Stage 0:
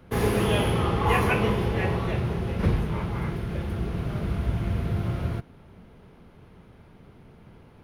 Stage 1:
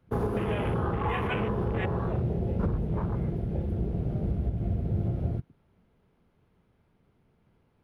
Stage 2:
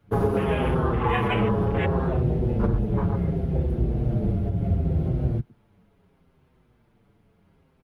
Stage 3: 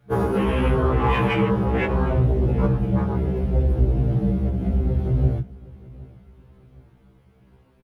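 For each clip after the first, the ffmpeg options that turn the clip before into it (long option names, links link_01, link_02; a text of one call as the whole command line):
ffmpeg -i in.wav -af "afwtdn=0.0282,alimiter=limit=-19.5dB:level=0:latency=1:release=213" out.wav
ffmpeg -i in.wav -filter_complex "[0:a]asplit=2[link_01][link_02];[link_02]adelay=6.6,afreqshift=-0.7[link_03];[link_01][link_03]amix=inputs=2:normalize=1,volume=8.5dB" out.wav
ffmpeg -i in.wav -filter_complex "[0:a]asplit=2[link_01][link_02];[link_02]asoftclip=type=hard:threshold=-24dB,volume=-11dB[link_03];[link_01][link_03]amix=inputs=2:normalize=0,aecho=1:1:764|1528|2292:0.0841|0.0328|0.0128,afftfilt=real='re*1.73*eq(mod(b,3),0)':imag='im*1.73*eq(mod(b,3),0)':win_size=2048:overlap=0.75,volume=4dB" out.wav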